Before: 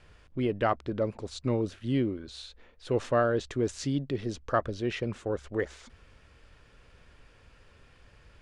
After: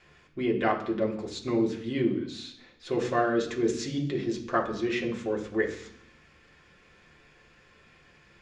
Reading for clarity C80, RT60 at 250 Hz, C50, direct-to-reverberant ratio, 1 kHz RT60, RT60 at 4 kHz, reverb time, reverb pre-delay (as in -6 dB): 12.5 dB, 0.85 s, 9.5 dB, -1.5 dB, 0.70 s, 0.85 s, 0.65 s, 3 ms